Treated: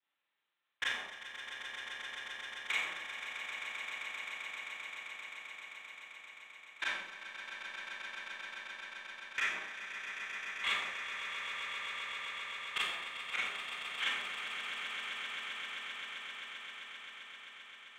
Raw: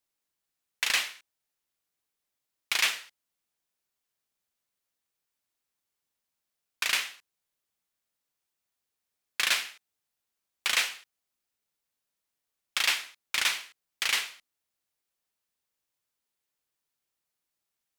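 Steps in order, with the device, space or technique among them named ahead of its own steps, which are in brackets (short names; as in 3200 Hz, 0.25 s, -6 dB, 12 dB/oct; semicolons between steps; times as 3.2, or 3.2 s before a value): treble ducked by the level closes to 410 Hz, closed at -29 dBFS; resonant low shelf 250 Hz +11.5 dB, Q 3; talking toy (LPC vocoder at 8 kHz; HPF 650 Hz 12 dB/oct; bell 1800 Hz +4.5 dB 0.21 oct; soft clip -29 dBFS, distortion -13 dB); swelling echo 0.131 s, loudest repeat 8, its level -10 dB; Schroeder reverb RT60 0.64 s, combs from 28 ms, DRR -6 dB; gain +1 dB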